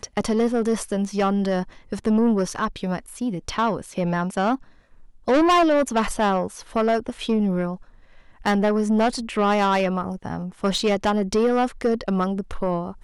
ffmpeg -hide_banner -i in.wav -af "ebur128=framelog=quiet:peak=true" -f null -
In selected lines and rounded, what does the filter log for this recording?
Integrated loudness:
  I:         -22.7 LUFS
  Threshold: -32.9 LUFS
Loudness range:
  LRA:         2.6 LU
  Threshold: -42.9 LUFS
  LRA low:   -24.3 LUFS
  LRA high:  -21.7 LUFS
True peak:
  Peak:      -13.9 dBFS